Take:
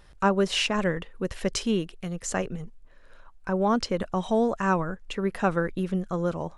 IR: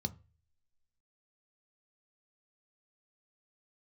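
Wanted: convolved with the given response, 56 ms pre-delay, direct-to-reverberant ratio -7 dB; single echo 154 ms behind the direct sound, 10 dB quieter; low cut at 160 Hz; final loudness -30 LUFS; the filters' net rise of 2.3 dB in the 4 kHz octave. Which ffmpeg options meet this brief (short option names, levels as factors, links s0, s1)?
-filter_complex "[0:a]highpass=160,equalizer=f=4000:t=o:g=3.5,aecho=1:1:154:0.316,asplit=2[s0][s1];[1:a]atrim=start_sample=2205,adelay=56[s2];[s1][s2]afir=irnorm=-1:irlink=0,volume=2.24[s3];[s0][s3]amix=inputs=2:normalize=0,volume=0.141"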